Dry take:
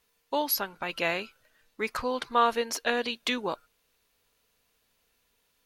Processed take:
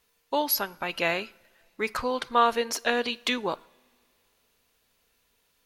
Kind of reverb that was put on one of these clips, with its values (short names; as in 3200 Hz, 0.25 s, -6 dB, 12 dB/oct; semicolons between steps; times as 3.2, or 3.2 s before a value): two-slope reverb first 0.6 s, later 2.9 s, from -18 dB, DRR 20 dB; gain +2 dB